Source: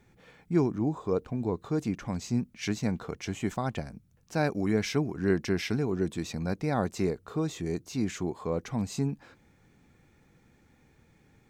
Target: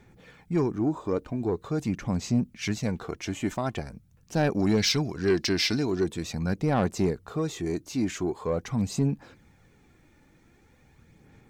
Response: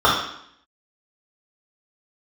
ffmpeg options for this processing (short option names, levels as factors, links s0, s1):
-filter_complex "[0:a]asettb=1/sr,asplit=3[s0][s1][s2];[s0]atrim=end=4.594[s3];[s1]atrim=start=4.59:end=6.04,asetpts=PTS-STARTPTS,afade=t=in:d=0.004:c=qsin,afade=t=out:st=1.446:d=0.004:c=qsin,equalizer=f=4500:w=1.2:g=14[s4];[s2]atrim=start=6.036[s5];[s3][s4]acrossfade=d=0.004:c1=hsin:c2=qsin[s6];[s6][s5]acrossfade=d=0.004:c1=qsin:c2=hsin,aphaser=in_gain=1:out_gain=1:delay=3.4:decay=0.36:speed=0.44:type=sinusoidal,asoftclip=type=tanh:threshold=0.126,volume=1.33"